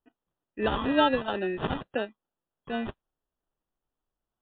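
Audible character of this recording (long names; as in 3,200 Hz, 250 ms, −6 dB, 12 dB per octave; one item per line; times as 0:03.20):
phaser sweep stages 2, 2.2 Hz, lowest notch 470–3,100 Hz
aliases and images of a low sample rate 2,200 Hz, jitter 0%
MP3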